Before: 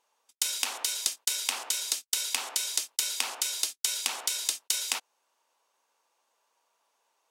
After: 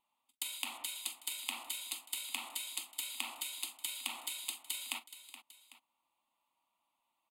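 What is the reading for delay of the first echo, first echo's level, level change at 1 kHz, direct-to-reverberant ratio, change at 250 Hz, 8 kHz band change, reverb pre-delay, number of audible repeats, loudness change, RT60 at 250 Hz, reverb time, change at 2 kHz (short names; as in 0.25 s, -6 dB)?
43 ms, -15.5 dB, -8.0 dB, none, -1.5 dB, -12.5 dB, none, 3, -10.5 dB, none, none, -7.5 dB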